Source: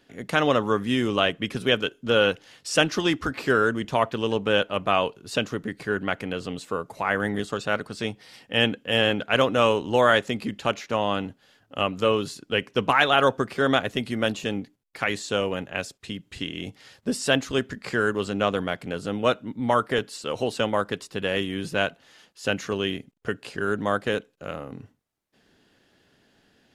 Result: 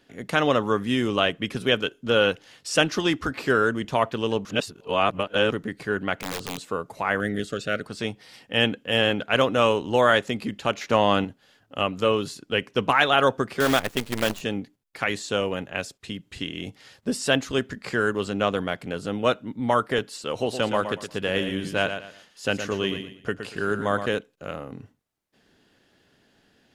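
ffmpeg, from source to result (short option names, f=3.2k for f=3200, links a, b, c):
-filter_complex "[0:a]asettb=1/sr,asplit=3[a][b][c];[a]atrim=end=6.144[d];[b]atrim=start=6.14:end=6.67,asetpts=PTS-STARTPTS,afade=t=in:d=0.004:c=qsin,afade=t=out:st=0.526:d=0.004:c=qsin,aeval=exprs='(mod(15*val(0)+1,2)-1)/15':c=same[e];[c]atrim=start=6.666[f];[d][e]acrossfade=d=0.004:c1=hsin:c2=qsin[g];[g][f]acrossfade=d=0.004:c1=qsin:c2=hsin,asettb=1/sr,asplit=3[h][i][j];[h]atrim=end=7.204[k];[i]atrim=start=7.2:end=7.83,asetpts=PTS-STARTPTS,afade=t=in:d=0.004:c=qsin,afade=t=out:st=0.626:d=0.004:c=qsin,asuperstop=centerf=930:order=4:qfactor=1.4[l];[j]atrim=start=7.826[m];[k][l]acrossfade=d=0.004:c1=hsin:c2=qsin[n];[n][m]acrossfade=d=0.004:c1=qsin:c2=hsin,asettb=1/sr,asplit=3[o][p][q];[o]atrim=end=10.814[r];[p]atrim=start=10.81:end=11.25,asetpts=PTS-STARTPTS,afade=t=in:d=0.004:c=qsin,afade=t=out:st=0.436:d=0.004:c=qsin,acontrast=32[s];[q]atrim=start=11.246[t];[r][s]acrossfade=d=0.004:c1=hsin:c2=qsin[u];[u][t]acrossfade=d=0.004:c1=qsin:c2=hsin,asettb=1/sr,asplit=3[v][w][x];[v]atrim=end=13.604[y];[w]atrim=start=13.6:end=14.41,asetpts=PTS-STARTPTS,afade=t=in:d=0.004:c=qsin,afade=t=out:st=0.806:d=0.004:c=qsin,acrusher=bits=5:dc=4:mix=0:aa=0.000001[z];[x]atrim=start=14.406[aa];[y][z]acrossfade=d=0.004:c1=hsin:c2=qsin[ab];[ab][aa]acrossfade=d=0.004:c1=qsin:c2=hsin,asettb=1/sr,asplit=3[ac][ad][ae];[ac]atrim=end=20.324[af];[ad]atrim=start=20.32:end=24.06,asetpts=PTS-STARTPTS,afade=t=in:d=0.004:c=qsin,afade=t=out:st=3.736:d=0.004:c=qsin,aecho=1:1:117|234|351:0.376|0.105|0.0295,atrim=end_sample=164934[ag];[ae]atrim=start=24.056[ah];[af][ag]acrossfade=d=0.004:c1=hsin:c2=qsin[ai];[ai][ah]acrossfade=d=0.004:c1=qsin:c2=hsin,asplit=3[aj][ak][al];[aj]atrim=end=4.452[am];[ak]atrim=start=4.448:end=5.522,asetpts=PTS-STARTPTS,areverse[an];[al]atrim=start=5.518[ao];[am][an]acrossfade=d=0.004:c1=hsin:c2=hsin[ap];[ap][ao]acrossfade=d=0.004:c1=hsin:c2=hsin"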